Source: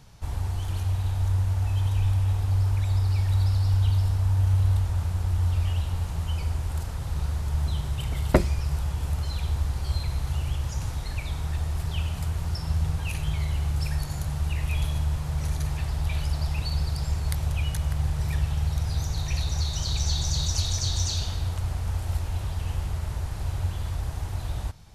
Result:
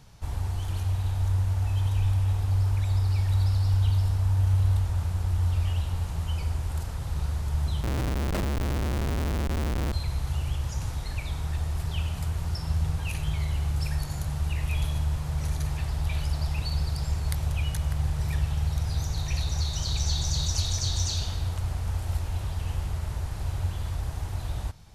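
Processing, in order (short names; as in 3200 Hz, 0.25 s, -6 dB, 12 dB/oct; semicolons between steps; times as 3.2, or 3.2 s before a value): 7.83–9.93 Schmitt trigger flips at -30.5 dBFS; gain -1 dB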